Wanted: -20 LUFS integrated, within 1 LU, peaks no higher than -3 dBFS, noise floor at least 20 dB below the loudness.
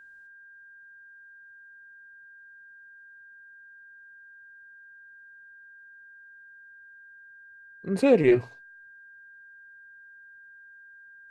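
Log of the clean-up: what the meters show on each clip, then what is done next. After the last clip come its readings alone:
steady tone 1.6 kHz; tone level -48 dBFS; loudness -23.0 LUFS; peak level -8.0 dBFS; loudness target -20.0 LUFS
-> band-stop 1.6 kHz, Q 30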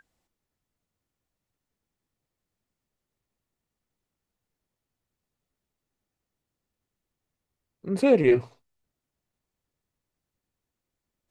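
steady tone not found; loudness -22.5 LUFS; peak level -7.5 dBFS; loudness target -20.0 LUFS
-> trim +2.5 dB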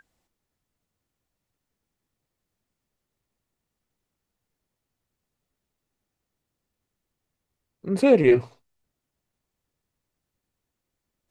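loudness -20.0 LUFS; peak level -5.0 dBFS; noise floor -84 dBFS

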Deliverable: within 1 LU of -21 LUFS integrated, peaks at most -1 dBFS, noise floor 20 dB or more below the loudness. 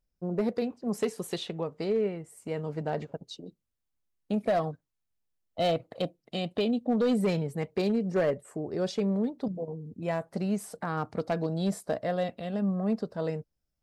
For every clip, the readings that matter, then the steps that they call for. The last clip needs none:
clipped samples 0.6%; clipping level -20.5 dBFS; loudness -31.0 LUFS; peak level -20.5 dBFS; loudness target -21.0 LUFS
-> clip repair -20.5 dBFS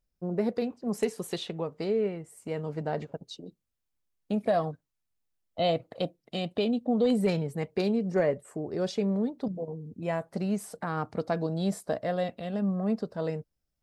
clipped samples 0.0%; loudness -31.0 LUFS; peak level -14.5 dBFS; loudness target -21.0 LUFS
-> trim +10 dB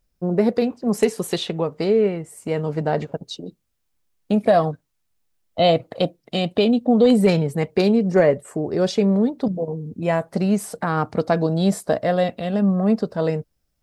loudness -21.0 LUFS; peak level -4.5 dBFS; noise floor -72 dBFS

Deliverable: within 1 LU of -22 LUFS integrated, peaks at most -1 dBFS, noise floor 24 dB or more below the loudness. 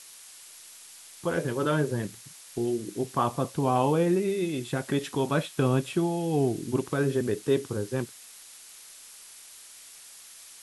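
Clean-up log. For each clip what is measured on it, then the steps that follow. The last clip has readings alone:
noise floor -49 dBFS; noise floor target -52 dBFS; loudness -28.0 LUFS; peak level -11.5 dBFS; loudness target -22.0 LUFS
-> noise reduction 6 dB, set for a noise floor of -49 dBFS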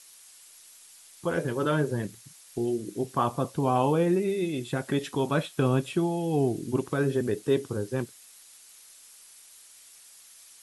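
noise floor -53 dBFS; loudness -28.0 LUFS; peak level -12.0 dBFS; loudness target -22.0 LUFS
-> trim +6 dB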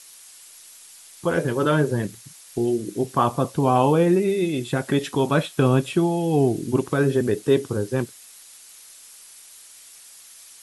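loudness -22.0 LUFS; peak level -6.0 dBFS; noise floor -47 dBFS

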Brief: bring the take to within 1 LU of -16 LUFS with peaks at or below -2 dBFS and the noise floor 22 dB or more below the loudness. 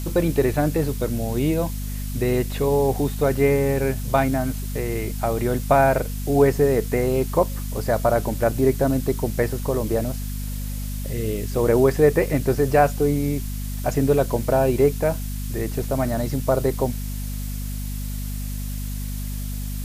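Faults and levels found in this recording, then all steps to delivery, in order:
hum 50 Hz; highest harmonic 250 Hz; hum level -26 dBFS; noise floor -29 dBFS; noise floor target -45 dBFS; loudness -22.5 LUFS; peak level -5.0 dBFS; loudness target -16.0 LUFS
-> de-hum 50 Hz, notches 5; noise reduction 16 dB, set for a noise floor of -29 dBFS; trim +6.5 dB; peak limiter -2 dBFS

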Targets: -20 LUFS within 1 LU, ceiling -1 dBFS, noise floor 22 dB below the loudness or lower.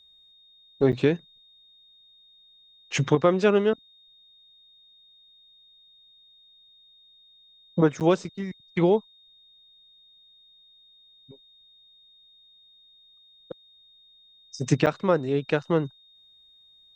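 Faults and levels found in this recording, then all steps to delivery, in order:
dropouts 3; longest dropout 8.6 ms; steady tone 3.7 kHz; tone level -54 dBFS; loudness -24.5 LUFS; peak level -7.0 dBFS; loudness target -20.0 LUFS
-> interpolate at 0.92/8.00/14.86 s, 8.6 ms; band-stop 3.7 kHz, Q 30; trim +4.5 dB

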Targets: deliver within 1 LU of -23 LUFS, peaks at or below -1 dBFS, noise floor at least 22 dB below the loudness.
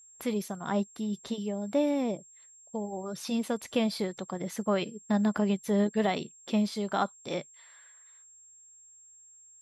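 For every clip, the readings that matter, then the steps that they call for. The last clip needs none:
steady tone 7.5 kHz; tone level -53 dBFS; loudness -31.0 LUFS; peak level -14.5 dBFS; loudness target -23.0 LUFS
-> band-stop 7.5 kHz, Q 30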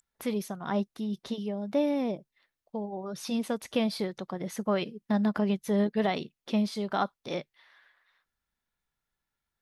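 steady tone not found; loudness -31.0 LUFS; peak level -14.5 dBFS; loudness target -23.0 LUFS
-> trim +8 dB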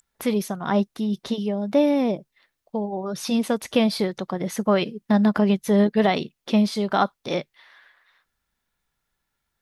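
loudness -23.0 LUFS; peak level -6.5 dBFS; noise floor -79 dBFS

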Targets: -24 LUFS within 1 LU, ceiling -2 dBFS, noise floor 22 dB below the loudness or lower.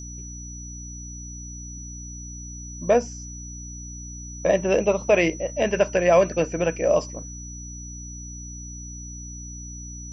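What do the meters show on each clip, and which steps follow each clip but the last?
hum 60 Hz; highest harmonic 300 Hz; hum level -36 dBFS; steady tone 5.9 kHz; tone level -39 dBFS; loudness -22.0 LUFS; peak level -6.5 dBFS; loudness target -24.0 LUFS
-> de-hum 60 Hz, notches 5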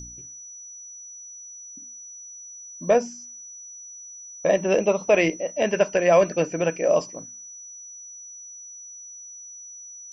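hum not found; steady tone 5.9 kHz; tone level -39 dBFS
-> band-stop 5.9 kHz, Q 30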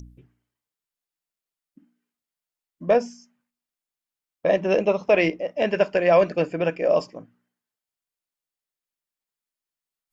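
steady tone not found; loudness -22.0 LUFS; peak level -6.5 dBFS; loudness target -24.0 LUFS
-> trim -2 dB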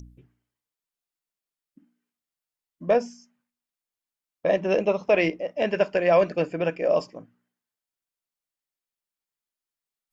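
loudness -24.0 LUFS; peak level -8.5 dBFS; noise floor -91 dBFS

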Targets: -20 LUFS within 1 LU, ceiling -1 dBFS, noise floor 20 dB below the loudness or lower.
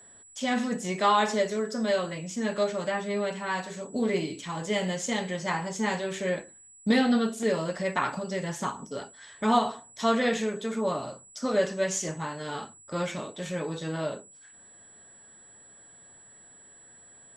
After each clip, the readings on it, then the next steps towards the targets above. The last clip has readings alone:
steady tone 7.8 kHz; tone level -51 dBFS; loudness -29.0 LUFS; peak level -9.5 dBFS; loudness target -20.0 LUFS
-> band-stop 7.8 kHz, Q 30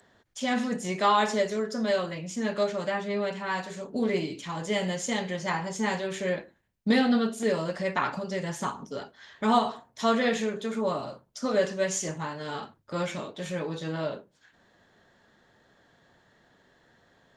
steady tone not found; loudness -29.0 LUFS; peak level -9.0 dBFS; loudness target -20.0 LUFS
-> trim +9 dB; peak limiter -1 dBFS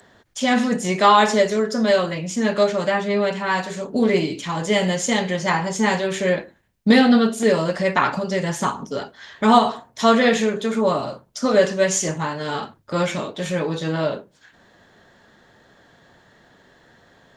loudness -20.0 LUFS; peak level -1.0 dBFS; noise floor -57 dBFS

